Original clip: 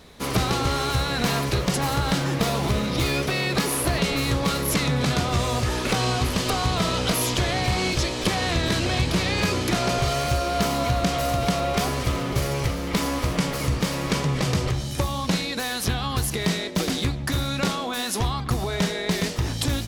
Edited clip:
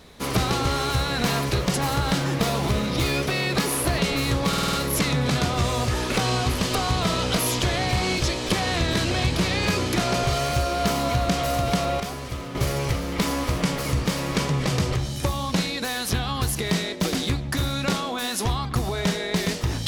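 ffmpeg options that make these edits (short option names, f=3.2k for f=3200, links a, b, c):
-filter_complex "[0:a]asplit=8[a][b][c][d][e][f][g][h];[a]atrim=end=4.532[i];[b]atrim=start=4.478:end=4.532[j];[c]atrim=start=4.478:end=4.532[k];[d]atrim=start=4.478:end=4.532[l];[e]atrim=start=4.478:end=4.532[m];[f]atrim=start=4.478:end=11.752[n];[g]atrim=start=11.748:end=12.302,asetpts=PTS-STARTPTS,volume=-7.5dB[o];[h]atrim=start=12.298[p];[i][j]acrossfade=d=0.004:c1=hsin:c2=hsin[q];[q][k]acrossfade=d=0.004:c1=hsin:c2=hsin[r];[r][l]acrossfade=d=0.004:c1=hsin:c2=hsin[s];[s][m]acrossfade=d=0.004:c1=hsin:c2=hsin[t];[t][n]acrossfade=d=0.004:c1=hsin:c2=hsin[u];[u][o]acrossfade=d=0.004:c1=hsin:c2=hsin[v];[v][p]acrossfade=d=0.004:c1=hsin:c2=hsin"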